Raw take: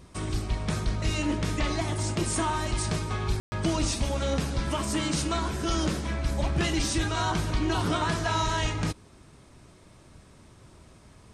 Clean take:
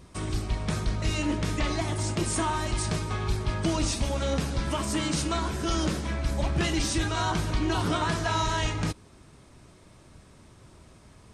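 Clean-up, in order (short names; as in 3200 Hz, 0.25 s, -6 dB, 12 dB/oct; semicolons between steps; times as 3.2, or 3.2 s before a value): room tone fill 3.4–3.52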